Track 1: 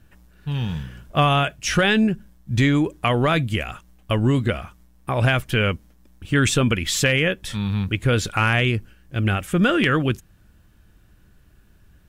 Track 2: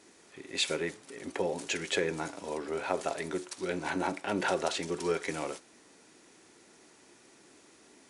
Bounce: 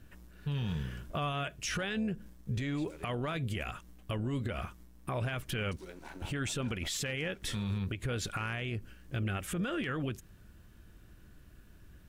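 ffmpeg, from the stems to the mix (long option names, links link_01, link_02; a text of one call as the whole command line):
ffmpeg -i stem1.wav -i stem2.wav -filter_complex "[0:a]bandreject=frequency=830:width=12,acompressor=threshold=-19dB:ratio=6,tremolo=f=290:d=0.333,volume=-0.5dB[link_01];[1:a]acompressor=threshold=-39dB:ratio=6,aeval=exprs='sgn(val(0))*max(abs(val(0))-0.00188,0)':channel_layout=same,adelay=2200,volume=-5dB,asplit=3[link_02][link_03][link_04];[link_02]atrim=end=3.38,asetpts=PTS-STARTPTS,afade=type=out:start_time=3.376:duration=0.004:curve=hsin[link_05];[link_03]atrim=start=3.38:end=5.57,asetpts=PTS-STARTPTS,volume=0[link_06];[link_04]atrim=start=5.57,asetpts=PTS-STARTPTS,afade=type=in:duration=0.004:curve=hsin[link_07];[link_05][link_06][link_07]concat=n=3:v=0:a=1[link_08];[link_01][link_08]amix=inputs=2:normalize=0,alimiter=level_in=2dB:limit=-24dB:level=0:latency=1:release=149,volume=-2dB" out.wav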